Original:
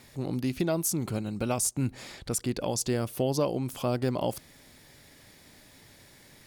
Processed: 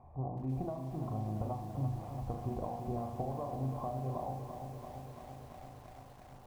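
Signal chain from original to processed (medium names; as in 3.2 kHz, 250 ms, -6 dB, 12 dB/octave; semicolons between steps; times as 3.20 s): cascade formant filter a; peaking EQ 64 Hz +9.5 dB 2.2 oct; flutter echo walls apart 6.5 m, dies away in 0.45 s; compression 8:1, threshold -49 dBFS, peak gain reduction 15.5 dB; tilt EQ -4 dB/octave; hum notches 50/100/150/200/250/300/350 Hz; gain riding 2 s; bit-crushed delay 337 ms, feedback 80%, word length 11-bit, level -8 dB; trim +8.5 dB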